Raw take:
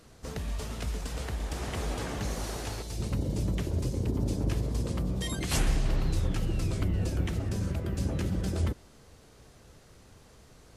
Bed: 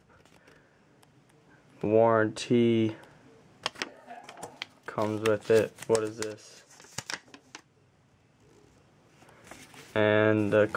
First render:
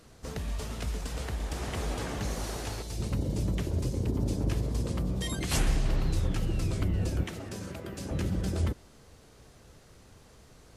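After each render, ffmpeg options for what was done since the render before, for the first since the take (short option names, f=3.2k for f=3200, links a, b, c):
-filter_complex "[0:a]asettb=1/sr,asplit=3[a][b][c];[a]atrim=end=7.234[d];[b]atrim=start=7.23:end=8.11,asetpts=PTS-STARTPTS,afade=t=in:d=0.004:c=qsin,afade=t=out:st=0.876:d=0.004:c=qsin,highpass=f=360:p=1[e];[c]atrim=start=8.106[f];[d][e]acrossfade=d=0.004:c1=hsin:c2=qsin[g];[g][f]acrossfade=d=0.004:c1=qsin:c2=hsin"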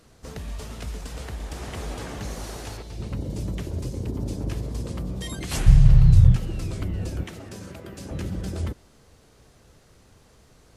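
-filter_complex "[0:a]asettb=1/sr,asplit=3[a][b][c];[a]atrim=end=2.774[d];[b]atrim=start=2.77:end=3.3,asetpts=PTS-STARTPTS,afade=t=in:d=0.004:c=qsin,afade=t=out:st=0.526:d=0.004:c=qsin,acrossover=split=4400[e][f];[f]acompressor=threshold=-56dB:ratio=4:attack=1:release=60[g];[e][g]amix=inputs=2:normalize=0[h];[c]atrim=start=3.296[i];[d][h]acrossfade=d=0.004:c1=hsin:c2=qsin[j];[j][i]acrossfade=d=0.004:c1=qsin:c2=hsin,asettb=1/sr,asplit=3[k][l][m];[k]atrim=end=5.664[n];[l]atrim=start=5.66:end=6.36,asetpts=PTS-STARTPTS,afade=t=in:d=0.004:c=qsin,afade=t=out:st=0.696:d=0.004:c=qsin,lowshelf=f=190:t=q:w=3:g=12.5[o];[m]atrim=start=6.356[p];[n][o]acrossfade=d=0.004:c1=hsin:c2=qsin[q];[q][p]acrossfade=d=0.004:c1=qsin:c2=hsin"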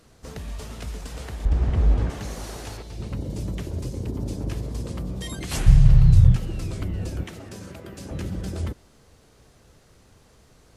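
-filter_complex "[0:a]asettb=1/sr,asplit=3[a][b][c];[a]atrim=end=1.454[d];[b]atrim=start=1.45:end=2.1,asetpts=PTS-STARTPTS,afade=t=in:d=0.004:c=qsin,afade=t=out:st=0.646:d=0.004:c=qsin,aemphasis=mode=reproduction:type=riaa[e];[c]atrim=start=2.096[f];[d][e]acrossfade=d=0.004:c1=hsin:c2=qsin[g];[g][f]acrossfade=d=0.004:c1=qsin:c2=hsin"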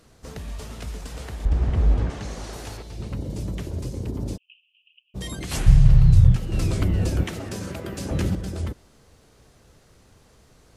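-filter_complex "[0:a]asettb=1/sr,asplit=3[a][b][c];[a]atrim=end=2.004[d];[b]atrim=start=2:end=2.53,asetpts=PTS-STARTPTS,afade=t=in:d=0.004:c=qsin,afade=t=out:st=0.526:d=0.004:c=qsin,lowpass=7.9k[e];[c]atrim=start=2.526[f];[d][e]acrossfade=d=0.004:c1=hsin:c2=qsin[g];[g][f]acrossfade=d=0.004:c1=qsin:c2=hsin,asplit=3[h][i][j];[h]afade=t=out:st=4.36:d=0.02[k];[i]asuperpass=centerf=2800:order=8:qfactor=5,afade=t=in:st=4.36:d=0.02,afade=t=out:st=5.14:d=0.02[l];[j]afade=t=in:st=5.14:d=0.02[m];[k][l][m]amix=inputs=3:normalize=0,asplit=3[n][o][p];[n]atrim=end=6.522[q];[o]atrim=start=6.518:end=8.352,asetpts=PTS-STARTPTS,volume=7dB[r];[p]atrim=start=8.348[s];[q][r]acrossfade=d=0.004:c1=hsin:c2=hsin[t];[t][s]acrossfade=d=0.004:c1=hsin:c2=hsin"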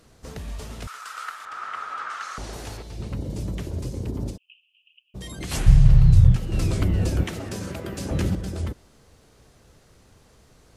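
-filter_complex "[0:a]asettb=1/sr,asplit=3[a][b][c];[a]atrim=end=0.874[d];[b]atrim=start=0.87:end=2.38,asetpts=PTS-STARTPTS,afade=t=in:d=0.004:c=qsin,afade=t=out:st=1.506:d=0.004:c=qsin,highpass=f=1.3k:t=q:w=12[e];[c]atrim=start=2.376[f];[d][e]acrossfade=d=0.004:c1=hsin:c2=qsin[g];[g][f]acrossfade=d=0.004:c1=qsin:c2=hsin,asettb=1/sr,asplit=3[h][i][j];[h]atrim=end=4.304[k];[i]atrim=start=4.3:end=5.4,asetpts=PTS-STARTPTS,afade=t=in:d=0.004:c=qsin,afade=t=out:st=1.096:d=0.004:c=qsin,acompressor=threshold=-34dB:ratio=2.5:attack=3.2:release=140:knee=1:detection=peak[l];[j]atrim=start=5.396[m];[k][l]acrossfade=d=0.004:c1=hsin:c2=qsin[n];[n][m]acrossfade=d=0.004:c1=qsin:c2=hsin"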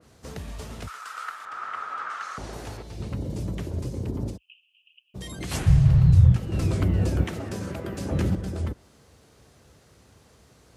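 -af "highpass=f=55:w=0.5412,highpass=f=55:w=1.3066,adynamicequalizer=threshold=0.00355:dfrequency=2200:dqfactor=0.7:tfrequency=2200:tqfactor=0.7:attack=5:release=100:ratio=0.375:range=2.5:mode=cutabove:tftype=highshelf"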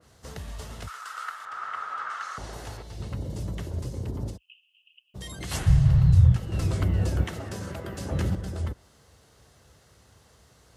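-af "equalizer=f=270:t=o:w=1.7:g=-6,bandreject=f=2.4k:w=12"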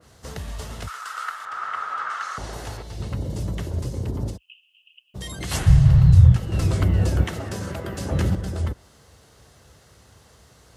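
-af "volume=5dB"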